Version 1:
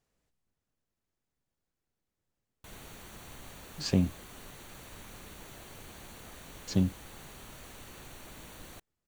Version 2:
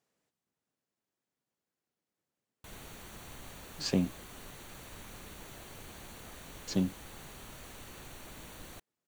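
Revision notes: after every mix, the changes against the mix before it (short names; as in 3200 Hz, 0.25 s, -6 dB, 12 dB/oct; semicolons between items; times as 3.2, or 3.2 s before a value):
speech: add HPF 180 Hz 12 dB/oct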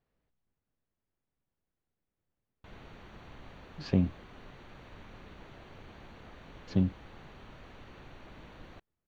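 speech: remove HPF 180 Hz 12 dB/oct; master: add air absorption 270 m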